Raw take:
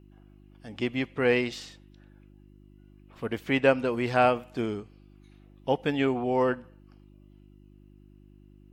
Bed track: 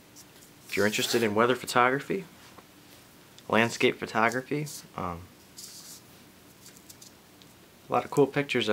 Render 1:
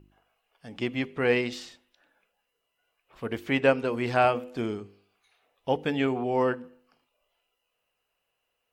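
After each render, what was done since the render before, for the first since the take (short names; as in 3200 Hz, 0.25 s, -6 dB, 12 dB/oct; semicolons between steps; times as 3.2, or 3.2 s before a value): de-hum 50 Hz, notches 10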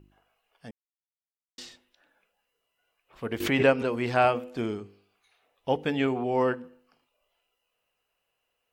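0.71–1.58 mute; 3.4–3.96 backwards sustainer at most 73 dB/s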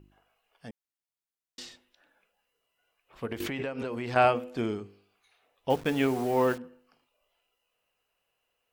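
3.25–4.16 compressor 16:1, threshold -29 dBFS; 5.7–6.58 level-crossing sampler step -39 dBFS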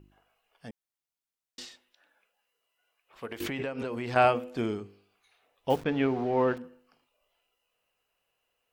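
1.65–3.41 low shelf 310 Hz -11.5 dB; 5.84–6.57 air absorption 230 m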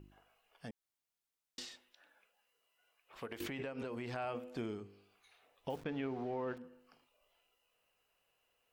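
limiter -18.5 dBFS, peak gain reduction 9.5 dB; compressor 2:1, threshold -46 dBFS, peak gain reduction 12 dB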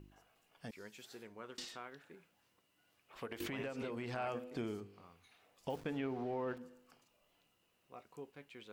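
add bed track -27.5 dB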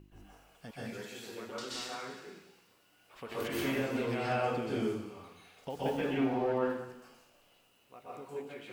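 thin delay 0.182 s, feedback 49%, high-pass 2700 Hz, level -11.5 dB; plate-style reverb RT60 0.79 s, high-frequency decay 0.9×, pre-delay 0.115 s, DRR -8 dB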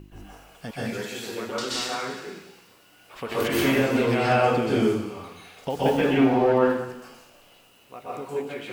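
gain +11.5 dB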